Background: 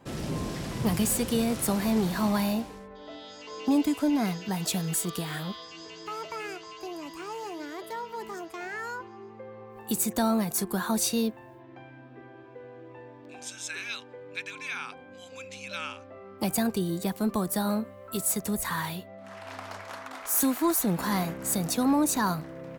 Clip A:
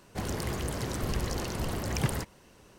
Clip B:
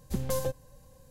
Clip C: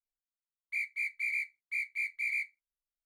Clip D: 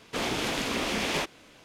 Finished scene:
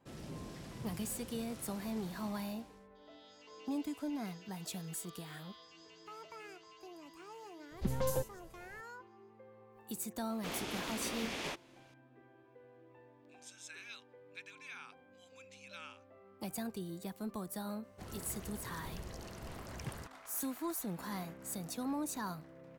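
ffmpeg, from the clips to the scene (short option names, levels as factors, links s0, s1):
-filter_complex "[0:a]volume=0.2[s0];[2:a]acrossover=split=5000[s1][s2];[s2]adelay=60[s3];[s1][s3]amix=inputs=2:normalize=0,atrim=end=1.1,asetpts=PTS-STARTPTS,volume=0.668,afade=t=in:d=0.004:c=hsin,afade=t=out:st=1.096:d=0.004:c=hsin,adelay=7710[s4];[4:a]atrim=end=1.64,asetpts=PTS-STARTPTS,volume=0.266,afade=t=in:d=0.004:c=hsin,afade=t=out:st=1.636:d=0.004:c=hsin,adelay=10300[s5];[1:a]atrim=end=2.78,asetpts=PTS-STARTPTS,volume=0.178,afade=t=in:d=0.004:c=hsin,afade=t=out:st=2.776:d=0.004:c=hsin,adelay=17830[s6];[s0][s4][s5][s6]amix=inputs=4:normalize=0"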